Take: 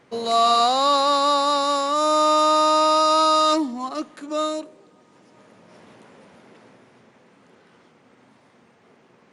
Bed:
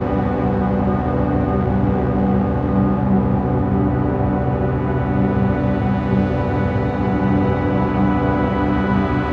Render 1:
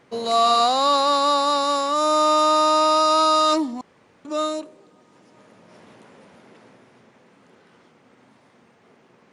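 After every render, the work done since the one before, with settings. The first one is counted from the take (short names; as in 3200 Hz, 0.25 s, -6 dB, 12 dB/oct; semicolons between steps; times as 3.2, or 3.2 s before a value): 3.81–4.25 room tone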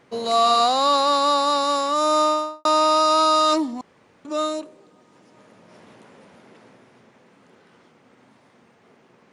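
2.19–2.65 studio fade out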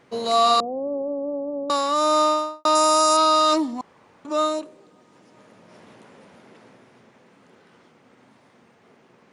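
0.6–1.7 steep low-pass 570 Hz; 2.75–3.17 resonant high shelf 5600 Hz +10.5 dB, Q 1.5; 3.78–4.59 bell 950 Hz +5.5 dB 0.95 oct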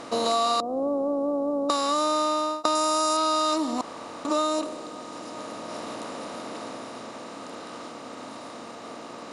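per-bin compression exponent 0.6; compressor 5:1, threshold -21 dBFS, peak gain reduction 8 dB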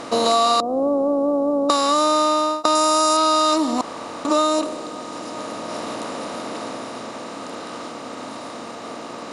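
gain +6.5 dB; limiter -1 dBFS, peak gain reduction 1.5 dB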